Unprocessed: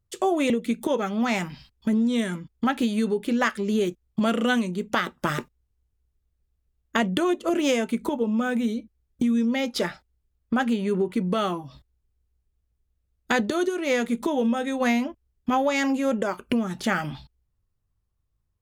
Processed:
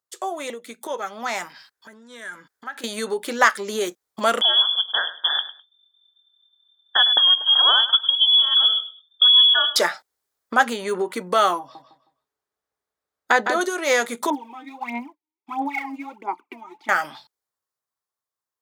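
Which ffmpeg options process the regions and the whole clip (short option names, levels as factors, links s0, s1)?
-filter_complex "[0:a]asettb=1/sr,asplit=3[s0][s1][s2];[s0]atrim=end=1.524[s3];[s1]atrim=start=1.52:end=2.84,asetpts=PTS-STARTPTS,afade=t=in:d=0.004:c=qsin,afade=t=out:st=1.316:d=0.004:c=qsin,equalizer=f=1600:w=3:g=11.5,acompressor=threshold=0.0141:ratio=6:attack=3.2:release=140:knee=1:detection=peak[s4];[s2]atrim=start=2.836[s5];[s3][s4]acrossfade=d=0.004:c1=hsin:c2=qsin[s6];[s6][s5]acrossfade=d=0.004:c1=qsin:c2=hsin,asettb=1/sr,asplit=3[s7][s8][s9];[s7]atrim=end=4.414[s10];[s8]atrim=start=4.41:end=9.76,asetpts=PTS-STARTPTS,afade=t=in:d=0.004:c=qsin,afade=t=out:st=5.346:d=0.004:c=qsin,asuperstop=centerf=980:order=20:qfactor=0.72,aecho=1:1:103|206:0.188|0.0396,atrim=end_sample=235935,lowpass=f=3100:t=q:w=0.5098,lowpass=f=3100:t=q:w=0.6013,lowpass=f=3100:t=q:w=0.9,lowpass=f=3100:t=q:w=2.563,afreqshift=-3600[s11];[s9]atrim=start=9.756[s12];[s10][s11]acrossfade=d=0.004:c1=hsin:c2=qsin[s13];[s13][s12]acrossfade=d=0.004:c1=qsin:c2=hsin,asettb=1/sr,asplit=3[s14][s15][s16];[s14]atrim=end=11.594[s17];[s15]atrim=start=11.59:end=13.61,asetpts=PTS-STARTPTS,afade=t=in:d=0.004:c=qsin,afade=t=out:st=2.016:d=0.004:c=qsin,highshelf=f=3600:g=-11.5,asplit=2[s18][s19];[s19]adelay=158,lowpass=f=4600:p=1,volume=0.473,asplit=2[s20][s21];[s21]adelay=158,lowpass=f=4600:p=1,volume=0.27,asplit=2[s22][s23];[s23]adelay=158,lowpass=f=4600:p=1,volume=0.27[s24];[s18][s20][s22][s24]amix=inputs=4:normalize=0,atrim=end_sample=89082[s25];[s16]atrim=start=13.606[s26];[s17][s25]acrossfade=d=0.004:c1=hsin:c2=qsin[s27];[s27][s26]acrossfade=d=0.004:c1=qsin:c2=hsin,asettb=1/sr,asplit=3[s28][s29][s30];[s28]atrim=end=14.304[s31];[s29]atrim=start=14.3:end=16.89,asetpts=PTS-STARTPTS,afade=t=in:d=0.004:c=qsin,afade=t=out:st=2.586:d=0.004:c=qsin,acrossover=split=4100[s32][s33];[s33]acompressor=threshold=0.00316:ratio=4:attack=1:release=60[s34];[s32][s34]amix=inputs=2:normalize=0,asplit=3[s35][s36][s37];[s35]bandpass=f=300:t=q:w=8,volume=1[s38];[s36]bandpass=f=870:t=q:w=8,volume=0.501[s39];[s37]bandpass=f=2240:t=q:w=8,volume=0.355[s40];[s38][s39][s40]amix=inputs=3:normalize=0,aphaser=in_gain=1:out_gain=1:delay=3.3:decay=0.76:speed=1.5:type=sinusoidal[s41];[s30]atrim=start=16.886[s42];[s31][s41]acrossfade=d=0.004:c1=hsin:c2=qsin[s43];[s43][s42]acrossfade=d=0.004:c1=qsin:c2=hsin,highpass=730,equalizer=f=2700:t=o:w=0.63:g=-8.5,dynaudnorm=f=170:g=21:m=3.76,volume=1.12"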